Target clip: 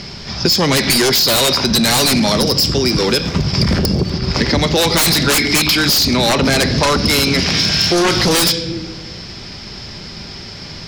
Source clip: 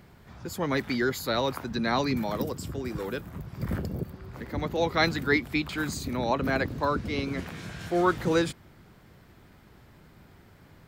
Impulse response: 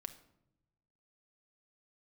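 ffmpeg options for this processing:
-filter_complex "[0:a]agate=range=-8dB:threshold=-41dB:ratio=16:detection=peak,lowpass=frequency=5200:width_type=q:width=10,asplit=2[link_01][link_02];[link_02]highshelf=frequency=1900:width_type=q:width=1.5:gain=7[link_03];[1:a]atrim=start_sample=2205[link_04];[link_03][link_04]afir=irnorm=-1:irlink=0,volume=8dB[link_05];[link_01][link_05]amix=inputs=2:normalize=0,aeval=exprs='1.5*sin(PI/2*7.08*val(0)/1.5)':channel_layout=same,acompressor=threshold=-11dB:ratio=10,volume=-1dB"

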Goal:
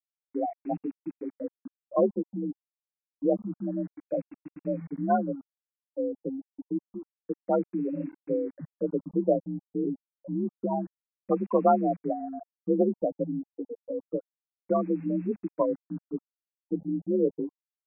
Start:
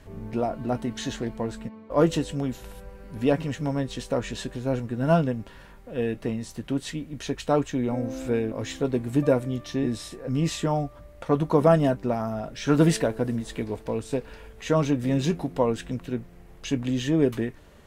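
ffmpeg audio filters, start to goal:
ffmpeg -i in.wav -filter_complex "[0:a]afftfilt=real='re*gte(hypot(re,im),0.251)':imag='im*gte(hypot(re,im),0.251)':win_size=1024:overlap=0.75,acrossover=split=250|3000[link_01][link_02][link_03];[link_01]acompressor=threshold=-29dB:ratio=5[link_04];[link_04][link_02][link_03]amix=inputs=3:normalize=0,afreqshift=45,acrusher=bits=7:mix=0:aa=0.5,afftfilt=real='re*lt(b*sr/1024,820*pow(2800/820,0.5+0.5*sin(2*PI*0.28*pts/sr)))':imag='im*lt(b*sr/1024,820*pow(2800/820,0.5+0.5*sin(2*PI*0.28*pts/sr)))':win_size=1024:overlap=0.75,volume=-2dB" out.wav

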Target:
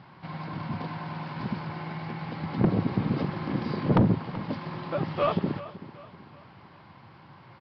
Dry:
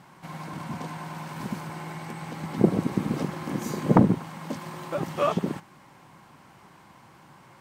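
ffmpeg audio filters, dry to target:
ffmpeg -i in.wav -af "equalizer=frequency=100:width_type=o:width=0.77:gain=8.5,aresample=11025,asoftclip=type=tanh:threshold=-14.5dB,aresample=44100,aecho=1:1:381|762|1143|1524:0.158|0.0634|0.0254|0.0101" out.wav

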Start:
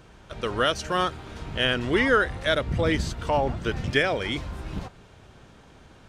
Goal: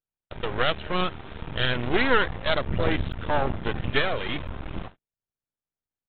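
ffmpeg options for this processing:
ffmpeg -i in.wav -af "agate=range=-49dB:threshold=-41dB:ratio=16:detection=peak,aresample=8000,aeval=exprs='max(val(0),0)':channel_layout=same,aresample=44100,volume=4dB" out.wav

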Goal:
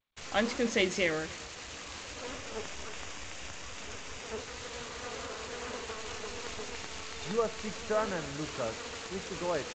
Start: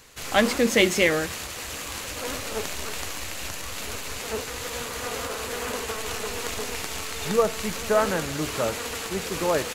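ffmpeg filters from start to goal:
ffmpeg -i in.wav -filter_complex "[0:a]asettb=1/sr,asplit=3[link_01][link_02][link_03];[link_01]atrim=end=2.294[link_04];[link_02]atrim=start=2.29:end=4.39,asetpts=PTS-STARTPTS,afade=type=in:duration=0.004:curve=qsin,afade=type=out:start_time=2.096:duration=0.004:curve=qsin,bandreject=frequency=4200:width=6[link_05];[link_03]atrim=start=4.386[link_06];[link_04][link_05]acrossfade=duration=0.004:curve1=hsin:curve2=qsin[link_07];[link_07][link_06]acrossfade=duration=0.004:curve1=qsin:curve2=hsin,acrusher=bits=5:mix=0:aa=0.000001,aecho=1:1:282:0.0794,volume=-9dB" -ar 16000 -c:a g722 out.g722

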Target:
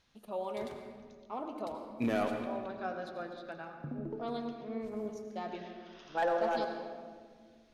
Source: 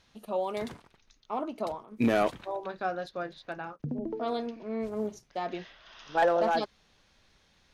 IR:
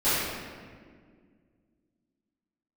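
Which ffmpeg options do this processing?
-filter_complex "[0:a]asplit=2[link_01][link_02];[1:a]atrim=start_sample=2205,adelay=73[link_03];[link_02][link_03]afir=irnorm=-1:irlink=0,volume=-20.5dB[link_04];[link_01][link_04]amix=inputs=2:normalize=0,volume=-7dB"

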